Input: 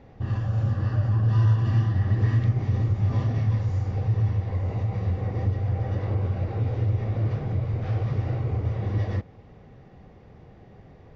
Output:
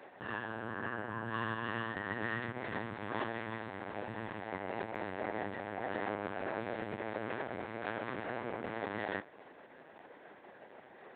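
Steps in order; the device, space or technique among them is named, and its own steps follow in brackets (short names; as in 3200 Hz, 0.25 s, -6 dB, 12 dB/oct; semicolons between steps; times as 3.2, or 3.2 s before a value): 0.55–1.35 air absorption 220 m; talking toy (LPC vocoder at 8 kHz pitch kept; HPF 490 Hz 12 dB/oct; bell 1600 Hz +8.5 dB 0.36 oct); gain +2 dB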